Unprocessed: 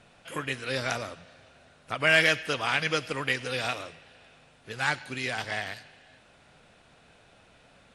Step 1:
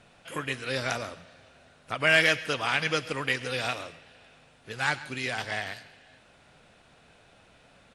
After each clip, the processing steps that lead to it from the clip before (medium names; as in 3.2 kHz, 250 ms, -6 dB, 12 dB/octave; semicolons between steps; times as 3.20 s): delay 135 ms -19.5 dB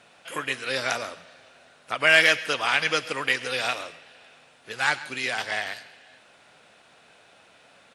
high-pass 470 Hz 6 dB/octave; trim +4.5 dB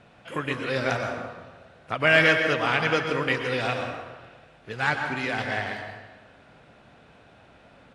RIAA curve playback; plate-style reverb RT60 1.2 s, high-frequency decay 0.5×, pre-delay 105 ms, DRR 5 dB